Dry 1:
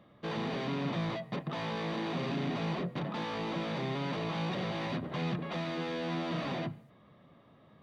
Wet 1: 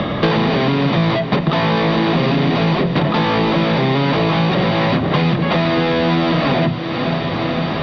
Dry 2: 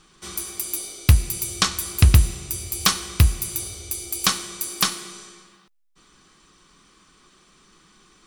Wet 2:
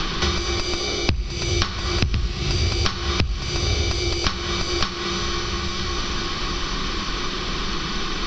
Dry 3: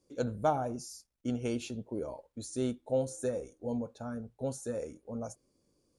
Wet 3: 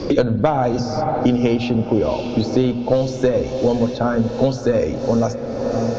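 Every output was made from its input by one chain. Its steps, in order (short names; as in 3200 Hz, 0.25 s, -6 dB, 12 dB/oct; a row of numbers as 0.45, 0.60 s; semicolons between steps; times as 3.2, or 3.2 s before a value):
one diode to ground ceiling -17.5 dBFS; low shelf 60 Hz +9.5 dB; notches 60/120/180/240 Hz; compressor, threshold -30 dBFS; steep low-pass 5400 Hz 48 dB/oct; diffused feedback echo 0.558 s, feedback 62%, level -15 dB; spring tank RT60 3.9 s, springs 45/49 ms, chirp 45 ms, DRR 17.5 dB; three-band squash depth 100%; normalise peaks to -1.5 dBFS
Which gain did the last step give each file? +19.5, +16.0, +19.0 dB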